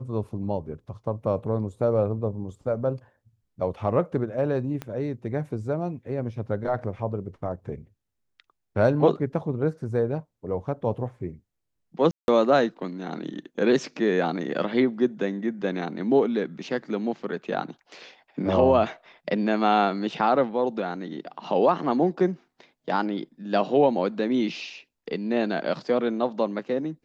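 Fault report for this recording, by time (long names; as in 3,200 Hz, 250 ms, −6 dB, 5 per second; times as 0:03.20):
0:04.82: click −19 dBFS
0:12.11–0:12.28: drop-out 171 ms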